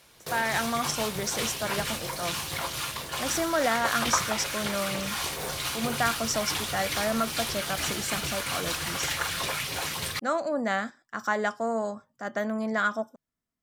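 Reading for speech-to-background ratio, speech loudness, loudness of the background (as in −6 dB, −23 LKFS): 0.0 dB, −30.5 LKFS, −30.5 LKFS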